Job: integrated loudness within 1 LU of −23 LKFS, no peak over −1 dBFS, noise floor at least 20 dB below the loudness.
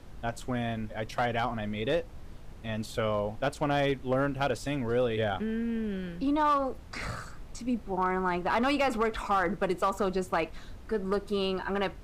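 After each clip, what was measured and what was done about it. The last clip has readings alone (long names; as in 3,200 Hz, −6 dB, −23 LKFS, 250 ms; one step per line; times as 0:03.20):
share of clipped samples 0.5%; peaks flattened at −20.0 dBFS; background noise floor −46 dBFS; target noise floor −51 dBFS; integrated loudness −30.5 LKFS; sample peak −20.0 dBFS; target loudness −23.0 LKFS
→ clipped peaks rebuilt −20 dBFS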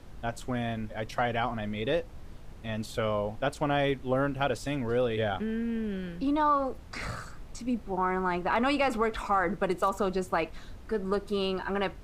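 share of clipped samples 0.0%; background noise floor −46 dBFS; target noise floor −51 dBFS
→ noise reduction from a noise print 6 dB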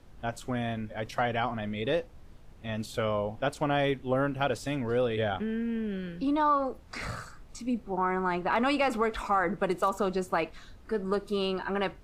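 background noise floor −51 dBFS; integrated loudness −30.5 LKFS; sample peak −16.0 dBFS; target loudness −23.0 LKFS
→ level +7.5 dB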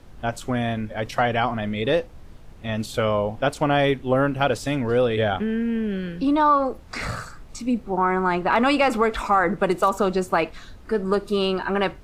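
integrated loudness −23.0 LKFS; sample peak −8.5 dBFS; background noise floor −44 dBFS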